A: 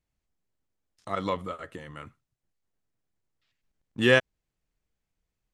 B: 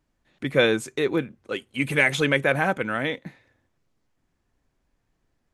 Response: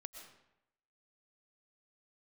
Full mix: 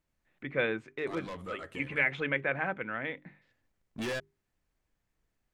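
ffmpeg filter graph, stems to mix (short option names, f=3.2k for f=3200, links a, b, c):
-filter_complex "[0:a]acompressor=threshold=-22dB:ratio=6,asoftclip=type=tanh:threshold=-32dB,volume=0.5dB[a];[1:a]lowpass=f=2.2k:t=q:w=1.6,volume=-11.5dB,asplit=2[b][c];[c]apad=whole_len=243896[d];[a][d]sidechaincompress=threshold=-35dB:ratio=8:attack=37:release=1170[e];[e][b]amix=inputs=2:normalize=0,bandreject=f=50:t=h:w=6,bandreject=f=100:t=h:w=6,bandreject=f=150:t=h:w=6,bandreject=f=200:t=h:w=6,bandreject=f=250:t=h:w=6,bandreject=f=300:t=h:w=6,bandreject=f=350:t=h:w=6,bandreject=f=400:t=h:w=6"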